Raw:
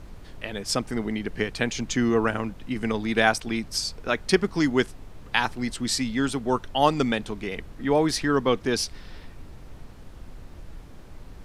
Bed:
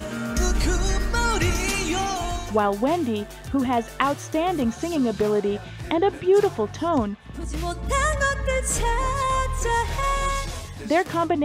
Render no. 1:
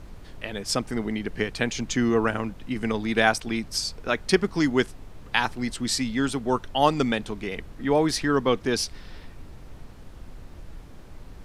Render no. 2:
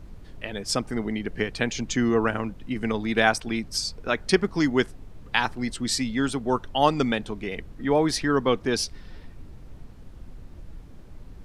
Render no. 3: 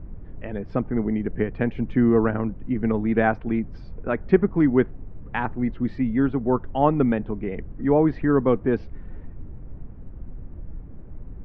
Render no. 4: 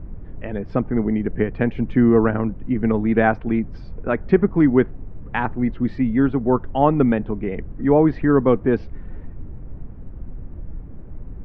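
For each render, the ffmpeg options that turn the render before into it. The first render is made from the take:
-af anull
-af "afftdn=nr=6:nf=-45"
-af "lowpass=f=2200:w=0.5412,lowpass=f=2200:w=1.3066,tiltshelf=f=760:g=6"
-af "volume=1.5,alimiter=limit=0.708:level=0:latency=1"

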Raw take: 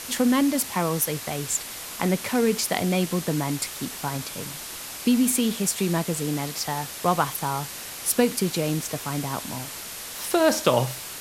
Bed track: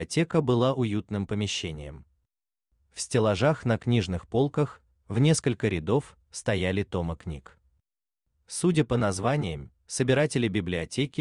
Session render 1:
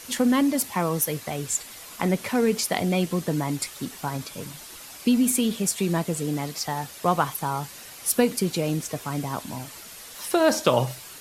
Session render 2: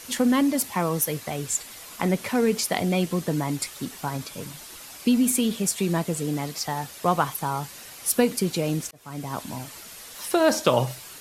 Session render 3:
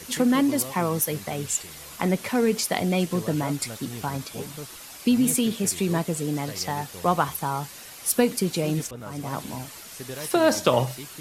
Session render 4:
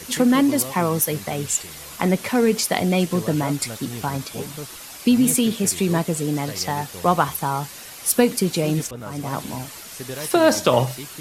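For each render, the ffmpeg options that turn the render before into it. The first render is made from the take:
-af "afftdn=nr=8:nf=-37"
-filter_complex "[0:a]asplit=2[s0][s1];[s0]atrim=end=8.91,asetpts=PTS-STARTPTS,afade=t=out:st=8.906:d=0.004:c=hsin[s2];[s1]atrim=start=8.91,asetpts=PTS-STARTPTS,afade=t=in:d=0.49[s3];[s2][s3]concat=n=2:v=0:a=1"
-filter_complex "[1:a]volume=0.2[s0];[0:a][s0]amix=inputs=2:normalize=0"
-af "volume=1.58,alimiter=limit=0.708:level=0:latency=1"

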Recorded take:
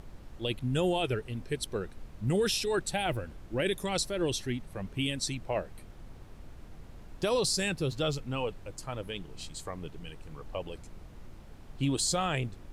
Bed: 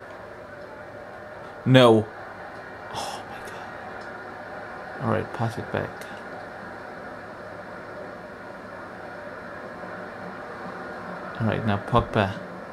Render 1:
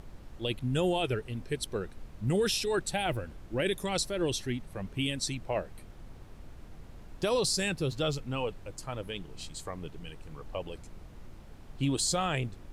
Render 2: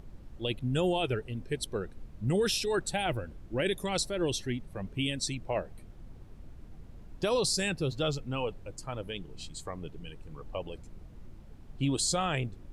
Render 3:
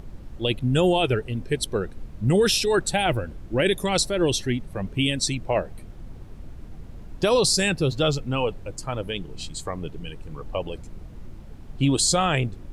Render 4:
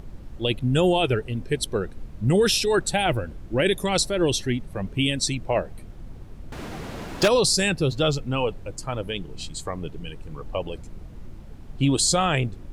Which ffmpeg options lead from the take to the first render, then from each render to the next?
-af anull
-af "afftdn=nr=7:nf=-50"
-af "volume=2.66"
-filter_complex "[0:a]asettb=1/sr,asplit=3[s0][s1][s2];[s0]atrim=end=6.524[s3];[s1]atrim=start=6.52:end=7.28,asetpts=PTS-STARTPTS,afade=t=in:d=0.004:c=qsin,afade=t=out:st=0.756:d=0.004:c=qsin,asplit=2[s4][s5];[s5]highpass=f=720:p=1,volume=22.4,asoftclip=type=tanh:threshold=0.282[s6];[s4][s6]amix=inputs=2:normalize=0,lowpass=f=6400:p=1,volume=0.501[s7];[s2]atrim=start=7.276[s8];[s3][s7]acrossfade=d=0.004:c1=hsin:c2=qsin[s9];[s9][s8]acrossfade=d=0.004:c1=qsin:c2=hsin"

